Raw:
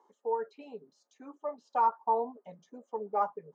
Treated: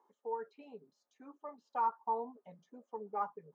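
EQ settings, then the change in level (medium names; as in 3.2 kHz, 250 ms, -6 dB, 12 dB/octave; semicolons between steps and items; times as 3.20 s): dynamic bell 620 Hz, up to -7 dB, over -47 dBFS, Q 3.5; peaking EQ 460 Hz -4.5 dB 2.4 oct; treble shelf 3.6 kHz -10.5 dB; -2.0 dB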